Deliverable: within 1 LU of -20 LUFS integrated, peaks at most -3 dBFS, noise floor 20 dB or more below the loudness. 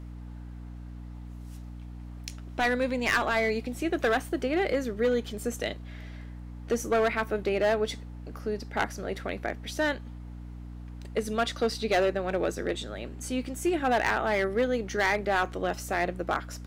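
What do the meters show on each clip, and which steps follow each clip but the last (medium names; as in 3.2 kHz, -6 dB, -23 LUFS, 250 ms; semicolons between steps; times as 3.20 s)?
clipped samples 1.0%; clipping level -19.0 dBFS; hum 60 Hz; highest harmonic 300 Hz; hum level -39 dBFS; loudness -28.5 LUFS; peak level -19.0 dBFS; loudness target -20.0 LUFS
-> clip repair -19 dBFS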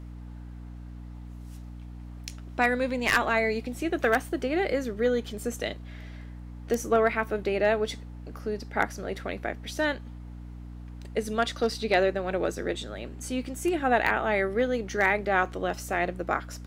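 clipped samples 0.0%; hum 60 Hz; highest harmonic 300 Hz; hum level -39 dBFS
-> hum notches 60/120/180/240/300 Hz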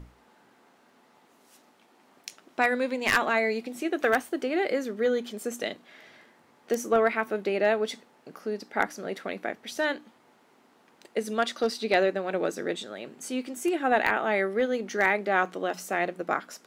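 hum not found; loudness -28.0 LUFS; peak level -9.5 dBFS; loudness target -20.0 LUFS
-> trim +8 dB; peak limiter -3 dBFS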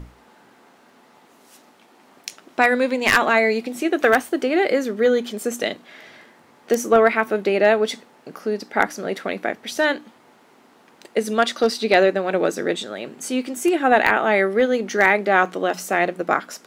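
loudness -20.0 LUFS; peak level -3.0 dBFS; noise floor -54 dBFS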